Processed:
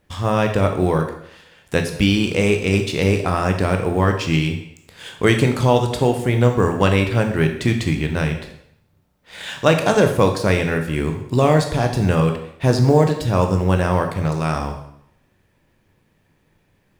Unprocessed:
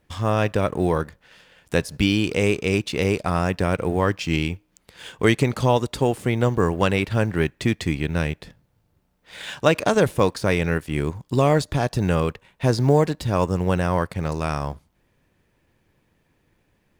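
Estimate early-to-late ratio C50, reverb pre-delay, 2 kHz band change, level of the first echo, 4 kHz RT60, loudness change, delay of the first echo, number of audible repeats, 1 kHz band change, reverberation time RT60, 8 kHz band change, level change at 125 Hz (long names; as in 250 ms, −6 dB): 8.0 dB, 7 ms, +3.0 dB, no echo audible, 0.70 s, +3.5 dB, no echo audible, no echo audible, +3.5 dB, 0.75 s, +3.0 dB, +4.5 dB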